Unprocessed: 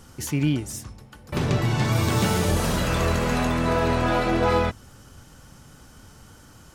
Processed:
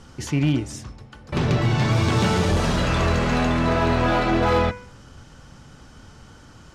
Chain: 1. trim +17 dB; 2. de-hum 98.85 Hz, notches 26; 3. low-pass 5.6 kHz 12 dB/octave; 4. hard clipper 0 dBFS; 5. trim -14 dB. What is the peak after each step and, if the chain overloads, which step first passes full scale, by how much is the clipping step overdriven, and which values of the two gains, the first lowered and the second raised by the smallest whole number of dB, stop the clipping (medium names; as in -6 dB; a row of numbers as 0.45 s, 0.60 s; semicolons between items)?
+7.5 dBFS, +7.0 dBFS, +7.0 dBFS, 0.0 dBFS, -14.0 dBFS; step 1, 7.0 dB; step 1 +10 dB, step 5 -7 dB